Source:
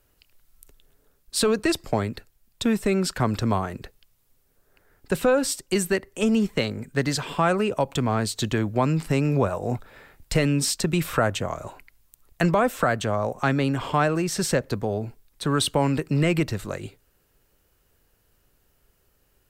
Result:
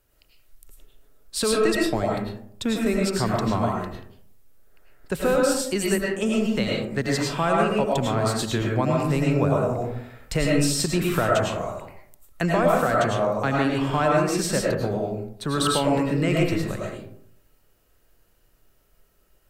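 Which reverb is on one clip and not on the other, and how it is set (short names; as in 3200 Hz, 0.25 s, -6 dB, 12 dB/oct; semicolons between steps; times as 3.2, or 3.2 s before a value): digital reverb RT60 0.66 s, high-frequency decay 0.4×, pre-delay 65 ms, DRR -2.5 dB; gain -3 dB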